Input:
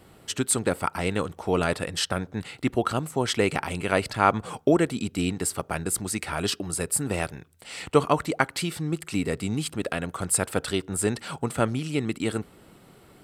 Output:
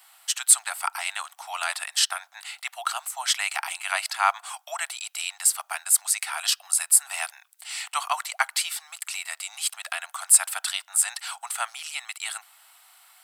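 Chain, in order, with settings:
Butterworth high-pass 700 Hz 72 dB per octave
spectral tilt +3 dB per octave
level −1 dB

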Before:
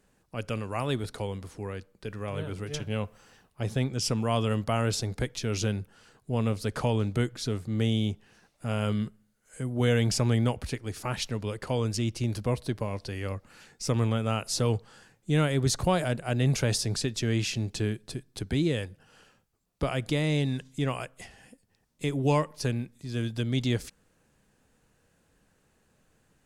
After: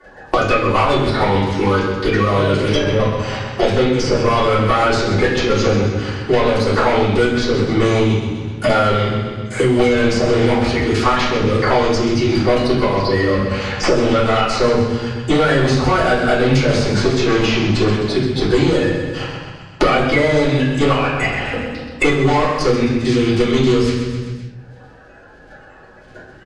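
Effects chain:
spectral magnitudes quantised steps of 30 dB
high-pass filter 100 Hz 6 dB per octave
parametric band 180 Hz −10.5 dB 2.7 octaves
mains-hum notches 60/120/180/240 Hz
output level in coarse steps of 12 dB
leveller curve on the samples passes 3
asymmetric clip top −29.5 dBFS
high-frequency loss of the air 86 metres
repeating echo 128 ms, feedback 38%, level −10 dB
convolution reverb RT60 0.60 s, pre-delay 3 ms, DRR −13 dB
multiband upward and downward compressor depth 100%
level +3 dB

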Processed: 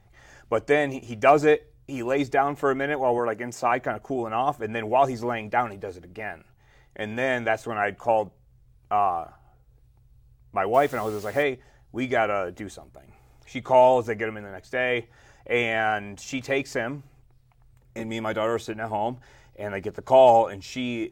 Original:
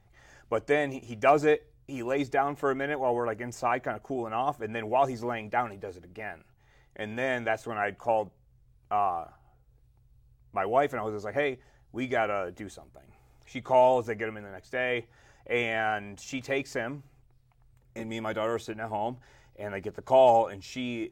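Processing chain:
0:03.18–0:03.72: high-pass filter 140 Hz
0:10.74–0:11.43: bit-depth reduction 8 bits, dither none
level +4.5 dB

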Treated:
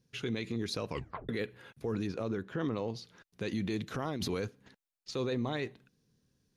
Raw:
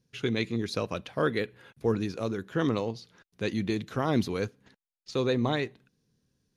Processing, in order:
0:00.89: tape stop 0.40 s
0:02.07–0:02.88: high-shelf EQ 4,900 Hz −12 dB
0:03.94–0:04.35: compressor whose output falls as the input rises −33 dBFS, ratio −1
brickwall limiter −25 dBFS, peak gain reduction 10 dB

